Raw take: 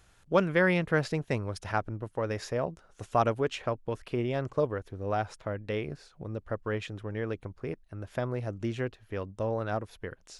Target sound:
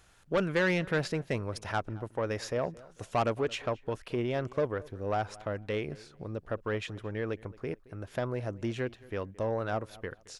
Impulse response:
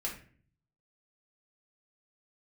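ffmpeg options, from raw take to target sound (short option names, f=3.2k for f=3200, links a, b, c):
-filter_complex "[0:a]lowshelf=f=240:g=-4,asoftclip=type=tanh:threshold=-22.5dB,asplit=2[a][b];[b]adelay=221,lowpass=f=2.8k:p=1,volume=-21dB,asplit=2[c][d];[d]adelay=221,lowpass=f=2.8k:p=1,volume=0.28[e];[c][e]amix=inputs=2:normalize=0[f];[a][f]amix=inputs=2:normalize=0,volume=1.5dB"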